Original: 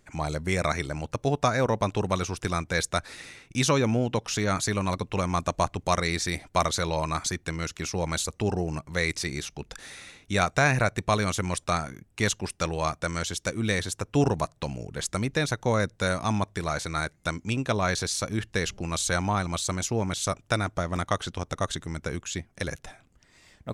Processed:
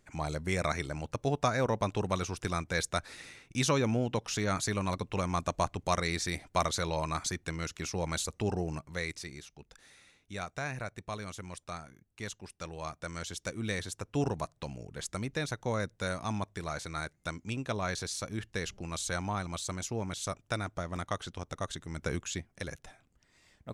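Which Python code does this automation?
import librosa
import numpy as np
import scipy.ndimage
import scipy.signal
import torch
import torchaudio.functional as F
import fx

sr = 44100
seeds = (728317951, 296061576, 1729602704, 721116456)

y = fx.gain(x, sr, db=fx.line((8.69, -5.0), (9.47, -15.0), (12.47, -15.0), (13.4, -8.0), (21.85, -8.0), (22.11, -1.0), (22.64, -8.0)))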